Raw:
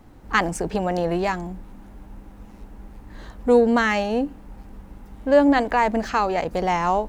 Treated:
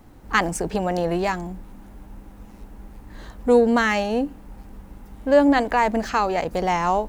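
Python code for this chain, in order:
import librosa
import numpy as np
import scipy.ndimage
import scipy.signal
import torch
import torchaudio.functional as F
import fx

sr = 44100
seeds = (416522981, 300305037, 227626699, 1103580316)

y = fx.high_shelf(x, sr, hz=7800.0, db=6.0)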